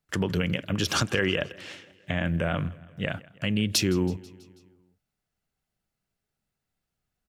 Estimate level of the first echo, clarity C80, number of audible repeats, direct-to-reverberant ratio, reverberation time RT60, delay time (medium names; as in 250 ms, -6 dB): -22.0 dB, no reverb, 3, no reverb, no reverb, 163 ms